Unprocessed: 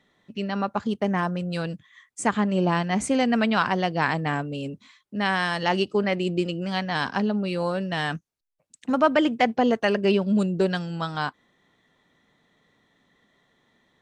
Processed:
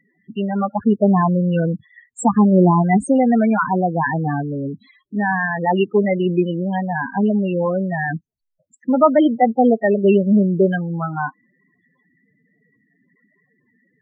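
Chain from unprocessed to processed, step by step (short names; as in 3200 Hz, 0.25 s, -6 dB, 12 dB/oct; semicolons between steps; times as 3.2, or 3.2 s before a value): 0.85–2.97 sample leveller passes 1; loudest bins only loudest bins 8; gain +7.5 dB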